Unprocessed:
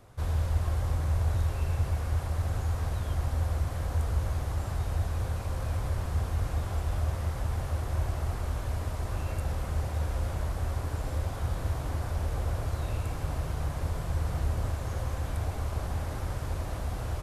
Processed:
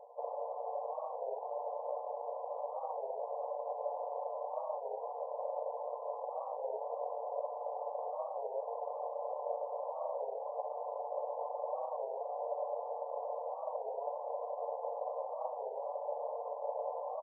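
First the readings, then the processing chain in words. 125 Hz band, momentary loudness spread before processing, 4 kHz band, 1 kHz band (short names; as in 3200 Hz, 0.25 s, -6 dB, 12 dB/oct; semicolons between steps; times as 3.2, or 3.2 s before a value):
under -40 dB, 4 LU, under -35 dB, +2.5 dB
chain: rattling part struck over -28 dBFS, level -36 dBFS; tilt +4 dB/oct; comb 6.9 ms, depth 74%; limiter -31 dBFS, peak gain reduction 9.5 dB; sample-and-hold 38×; brick-wall FIR band-pass 460–1200 Hz; Schroeder reverb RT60 3.5 s, combs from 32 ms, DRR 9 dB; record warp 33 1/3 rpm, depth 160 cents; gain +8 dB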